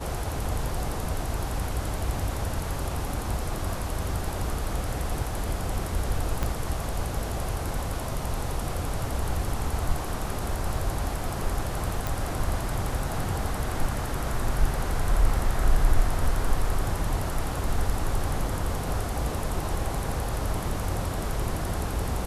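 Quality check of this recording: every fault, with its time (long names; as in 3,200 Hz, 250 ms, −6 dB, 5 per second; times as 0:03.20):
0:06.43: click −13 dBFS
0:12.07: click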